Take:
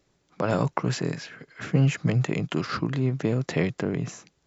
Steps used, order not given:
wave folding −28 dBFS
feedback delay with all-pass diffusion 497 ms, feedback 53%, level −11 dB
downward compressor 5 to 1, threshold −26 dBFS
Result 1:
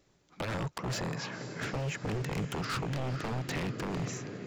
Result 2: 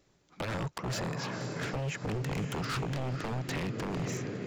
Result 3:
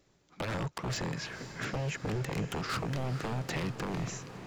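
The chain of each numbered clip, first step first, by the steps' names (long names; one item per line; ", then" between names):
downward compressor, then feedback delay with all-pass diffusion, then wave folding
feedback delay with all-pass diffusion, then downward compressor, then wave folding
downward compressor, then wave folding, then feedback delay with all-pass diffusion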